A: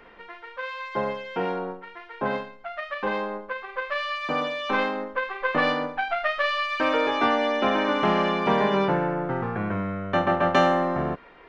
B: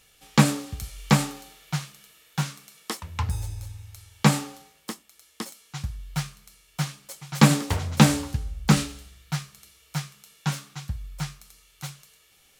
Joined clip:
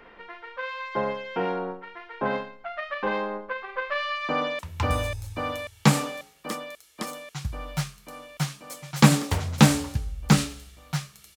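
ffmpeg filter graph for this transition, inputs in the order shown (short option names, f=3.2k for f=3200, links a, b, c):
-filter_complex "[0:a]apad=whole_dur=11.36,atrim=end=11.36,atrim=end=4.592[a];[1:a]atrim=start=2.978:end=9.75[b];[a][b]acrossfade=d=0.004:c1=hsin:c2=hsin,asplit=2[c][d];[d]afade=t=in:st=4.28:d=0.01,afade=t=out:st=4.59:d=0.01,aecho=0:1:540|1080|1620|2160|2700|3240|3780|4320|4860|5400|5940|6480:0.841395|0.631046|0.473285|0.354964|0.266223|0.199667|0.14975|0.112313|0.0842345|0.0631759|0.0473819|0.0355364[e];[c][e]amix=inputs=2:normalize=0"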